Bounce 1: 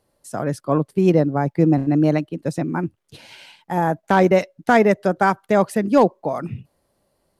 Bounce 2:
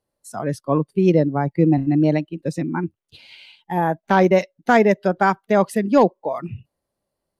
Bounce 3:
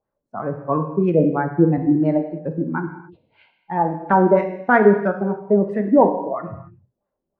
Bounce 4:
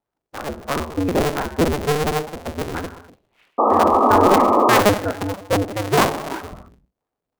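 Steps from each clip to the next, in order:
noise reduction from a noise print of the clip's start 12 dB
auto-filter low-pass sine 3 Hz 300–1,600 Hz; reverb whose tail is shaped and stops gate 310 ms falling, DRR 5 dB; level −3.5 dB
sub-harmonics by changed cycles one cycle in 2, inverted; sound drawn into the spectrogram noise, 0:03.58–0:04.81, 210–1,300 Hz −12 dBFS; level −3 dB

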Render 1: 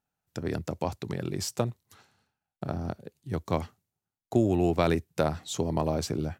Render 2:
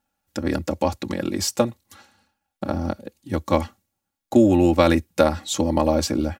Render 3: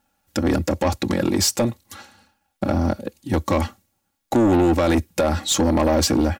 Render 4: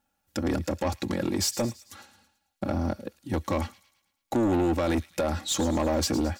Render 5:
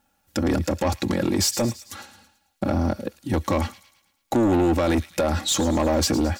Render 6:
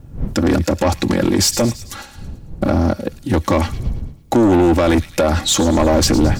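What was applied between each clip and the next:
comb filter 3.6 ms, depth 97%; level +6 dB
brickwall limiter −11.5 dBFS, peak gain reduction 10 dB; soft clipping −20.5 dBFS, distortion −10 dB; level +8 dB
delay with a high-pass on its return 110 ms, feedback 49%, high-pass 2,700 Hz, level −13 dB; level −7.5 dB
brickwall limiter −24 dBFS, peak gain reduction 5.5 dB; level +8.5 dB
wind on the microphone 98 Hz −35 dBFS; highs frequency-modulated by the lows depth 0.19 ms; level +7 dB

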